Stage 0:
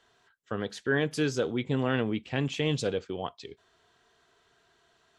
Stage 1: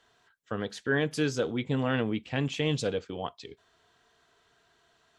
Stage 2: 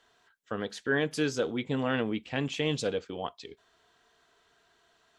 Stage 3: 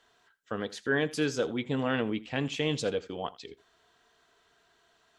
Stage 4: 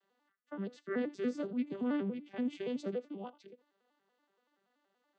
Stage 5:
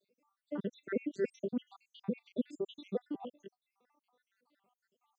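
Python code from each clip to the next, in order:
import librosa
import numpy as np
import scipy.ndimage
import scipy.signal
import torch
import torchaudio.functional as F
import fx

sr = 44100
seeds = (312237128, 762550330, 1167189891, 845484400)

y1 = fx.notch(x, sr, hz=380.0, q=12.0)
y2 = fx.peak_eq(y1, sr, hz=110.0, db=-6.0, octaves=1.2)
y3 = y2 + 10.0 ** (-19.5 / 20.0) * np.pad(y2, (int(82 * sr / 1000.0), 0))[:len(y2)]
y4 = fx.vocoder_arp(y3, sr, chord='major triad', root=55, every_ms=95)
y4 = y4 * librosa.db_to_amplitude(-5.0)
y5 = fx.spec_dropout(y4, sr, seeds[0], share_pct=77)
y5 = y5 * librosa.db_to_amplitude(5.5)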